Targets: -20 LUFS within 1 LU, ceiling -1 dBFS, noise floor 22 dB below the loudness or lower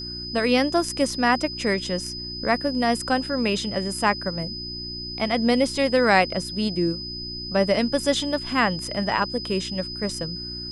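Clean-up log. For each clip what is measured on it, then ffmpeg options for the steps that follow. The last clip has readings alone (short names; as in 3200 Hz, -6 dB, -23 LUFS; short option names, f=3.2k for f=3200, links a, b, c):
hum 60 Hz; harmonics up to 360 Hz; hum level -37 dBFS; steady tone 5000 Hz; tone level -32 dBFS; loudness -23.5 LUFS; peak -6.0 dBFS; loudness target -20.0 LUFS
-> -af "bandreject=f=60:t=h:w=4,bandreject=f=120:t=h:w=4,bandreject=f=180:t=h:w=4,bandreject=f=240:t=h:w=4,bandreject=f=300:t=h:w=4,bandreject=f=360:t=h:w=4"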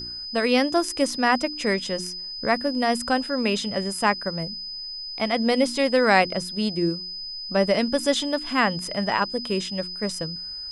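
hum none; steady tone 5000 Hz; tone level -32 dBFS
-> -af "bandreject=f=5k:w=30"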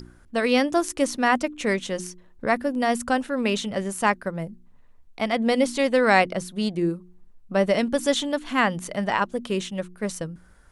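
steady tone none; loudness -24.0 LUFS; peak -5.5 dBFS; loudness target -20.0 LUFS
-> -af "volume=4dB"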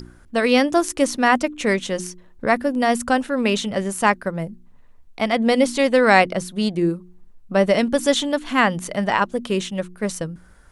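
loudness -20.0 LUFS; peak -1.5 dBFS; noise floor -49 dBFS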